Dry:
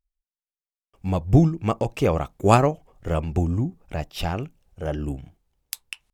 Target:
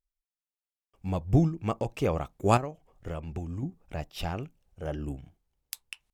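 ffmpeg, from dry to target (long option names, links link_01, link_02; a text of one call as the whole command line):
ffmpeg -i in.wav -filter_complex "[0:a]asettb=1/sr,asplit=3[link_01][link_02][link_03];[link_01]atrim=end=2.574[link_04];[link_02]atrim=start=2.57:end=3.63,asetpts=PTS-STARTPTS,afade=type=in:duration=0.004:curve=qsin,afade=type=out:start_time=1.056:duration=0.004:curve=qsin,acrossover=split=1400|4400[link_05][link_06][link_07];[link_05]acompressor=threshold=-27dB:ratio=4[link_08];[link_06]acompressor=threshold=-44dB:ratio=4[link_09];[link_07]acompressor=threshold=-59dB:ratio=4[link_10];[link_08][link_09][link_10]amix=inputs=3:normalize=0[link_11];[link_03]atrim=start=3.626[link_12];[link_04][link_11]acrossfade=duration=0.004:curve1=hsin:curve2=qsin[link_13];[link_13][link_12]acrossfade=duration=0.004:curve1=qsin:curve2=hsin,volume=-6.5dB" out.wav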